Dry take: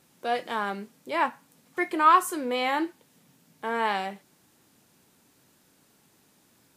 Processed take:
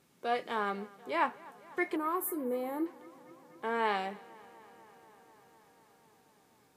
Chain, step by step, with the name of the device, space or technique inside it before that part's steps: inside a helmet (treble shelf 5.1 kHz -5 dB; small resonant body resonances 420/1200/2200 Hz, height 8 dB, ringing for 95 ms); 1.96–2.86 s: FFT filter 490 Hz 0 dB, 710 Hz -8 dB, 3 kHz -22 dB, 7 kHz -11 dB, 13 kHz +14 dB; tape echo 246 ms, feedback 84%, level -21.5 dB, low-pass 5.6 kHz; trim -4.5 dB

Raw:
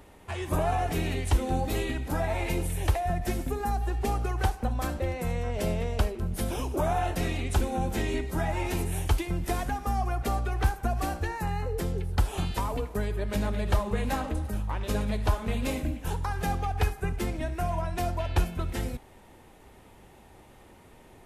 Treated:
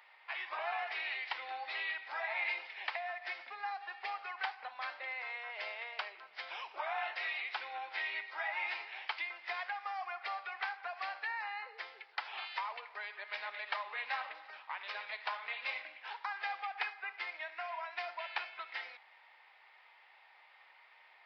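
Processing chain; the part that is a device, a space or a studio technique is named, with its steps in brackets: musical greeting card (resampled via 11.025 kHz; high-pass 830 Hz 24 dB/octave; peaking EQ 2.1 kHz +9.5 dB 0.58 oct); trim -5 dB

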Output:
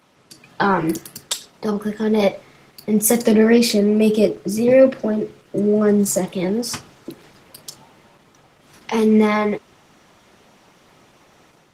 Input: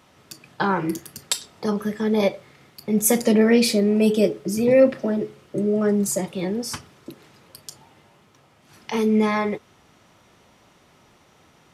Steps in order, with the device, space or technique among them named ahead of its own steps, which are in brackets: video call (high-pass 120 Hz 12 dB/octave; level rider gain up to 5.5 dB; Opus 16 kbps 48 kHz)

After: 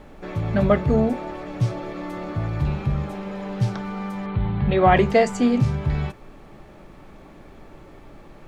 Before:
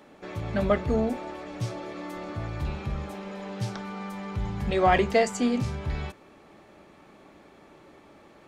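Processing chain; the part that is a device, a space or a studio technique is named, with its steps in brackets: car interior (peaking EQ 140 Hz +8 dB 0.63 oct; treble shelf 3.6 kHz -7.5 dB; brown noise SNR 23 dB); 4.26–4.97 s: steep low-pass 4.3 kHz 72 dB/octave; trim +5 dB

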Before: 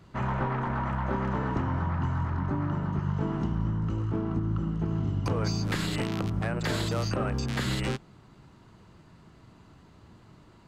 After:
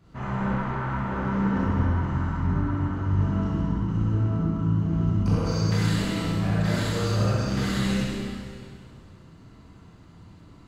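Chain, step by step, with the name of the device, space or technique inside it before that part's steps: tunnel (flutter echo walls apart 11.3 m, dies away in 0.63 s; reverberation RT60 2.1 s, pre-delay 20 ms, DRR -7.5 dB); tone controls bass +4 dB, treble +1 dB; trim -7.5 dB

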